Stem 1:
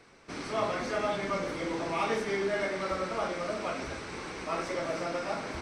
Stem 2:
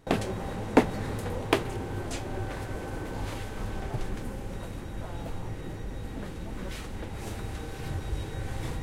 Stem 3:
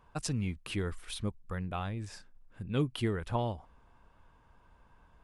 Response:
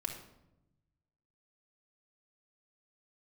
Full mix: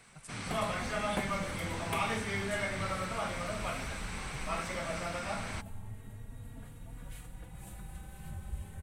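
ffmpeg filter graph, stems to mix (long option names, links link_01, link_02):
-filter_complex "[0:a]equalizer=frequency=6200:width=0.32:gain=8,acrossover=split=6100[link_01][link_02];[link_02]acompressor=threshold=-53dB:ratio=4:attack=1:release=60[link_03];[link_01][link_03]amix=inputs=2:normalize=0,volume=0.5dB[link_04];[1:a]asplit=2[link_05][link_06];[link_06]adelay=3.6,afreqshift=0.28[link_07];[link_05][link_07]amix=inputs=2:normalize=1,adelay=400,volume=-5dB[link_08];[2:a]volume=-14dB[link_09];[link_04][link_08][link_09]amix=inputs=3:normalize=0,firequalizer=gain_entry='entry(210,0);entry(310,-13);entry(690,-5);entry(1500,-5);entry(3100,-5);entry(5300,-11);entry(8300,5)':delay=0.05:min_phase=1"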